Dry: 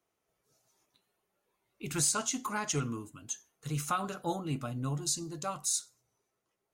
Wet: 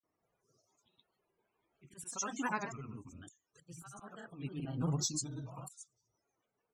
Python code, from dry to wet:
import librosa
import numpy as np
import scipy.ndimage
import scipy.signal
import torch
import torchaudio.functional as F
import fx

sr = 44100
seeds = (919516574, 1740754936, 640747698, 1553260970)

y = fx.auto_swell(x, sr, attack_ms=544.0)
y = fx.spec_topn(y, sr, count=64)
y = fx.granulator(y, sr, seeds[0], grain_ms=100.0, per_s=20.0, spray_ms=100.0, spread_st=3)
y = y * 10.0 ** (1.0 / 20.0)